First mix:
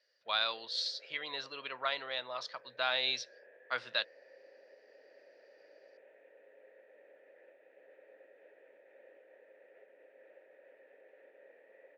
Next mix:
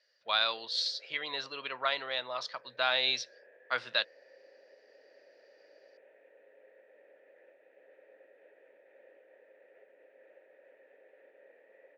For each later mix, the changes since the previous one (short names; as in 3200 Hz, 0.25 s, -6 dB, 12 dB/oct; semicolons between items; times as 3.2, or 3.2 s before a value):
speech +3.5 dB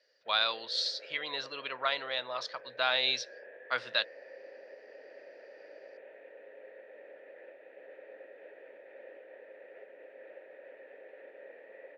background +9.0 dB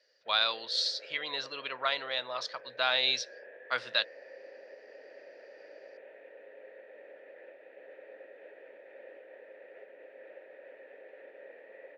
master: add high shelf 6200 Hz +6 dB